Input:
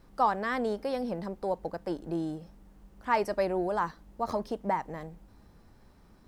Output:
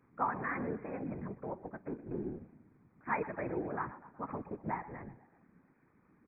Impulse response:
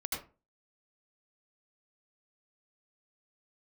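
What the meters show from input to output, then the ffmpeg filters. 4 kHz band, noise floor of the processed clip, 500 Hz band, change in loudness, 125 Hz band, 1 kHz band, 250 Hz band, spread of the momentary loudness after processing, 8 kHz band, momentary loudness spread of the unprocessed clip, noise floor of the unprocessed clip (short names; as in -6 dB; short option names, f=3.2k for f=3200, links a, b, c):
under -35 dB, -70 dBFS, -10.0 dB, -8.0 dB, -2.5 dB, -8.0 dB, -6.0 dB, 12 LU, under -25 dB, 11 LU, -58 dBFS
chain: -filter_complex "[0:a]equalizer=f=610:w=1.3:g=-10,asplit=6[a][b][c][d][e][f];[b]adelay=123,afreqshift=-34,volume=-16dB[g];[c]adelay=246,afreqshift=-68,volume=-21.2dB[h];[d]adelay=369,afreqshift=-102,volume=-26.4dB[i];[e]adelay=492,afreqshift=-136,volume=-31.6dB[j];[f]adelay=615,afreqshift=-170,volume=-36.8dB[k];[a][g][h][i][j][k]amix=inputs=6:normalize=0,afftfilt=real='re*between(b*sr/4096,140,2500)':imag='im*between(b*sr/4096,140,2500)':win_size=4096:overlap=0.75,afftfilt=real='hypot(re,im)*cos(2*PI*random(0))':imag='hypot(re,im)*sin(2*PI*random(1))':win_size=512:overlap=0.75,volume=2.5dB"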